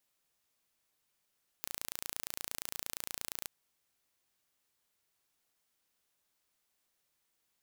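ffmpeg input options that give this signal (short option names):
-f lavfi -i "aevalsrc='0.282*eq(mod(n,1542),0)':d=1.84:s=44100"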